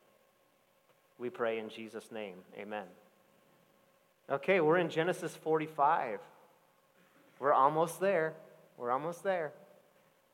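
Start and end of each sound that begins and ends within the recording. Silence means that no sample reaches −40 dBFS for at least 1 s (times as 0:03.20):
0:01.21–0:02.84
0:04.29–0:06.17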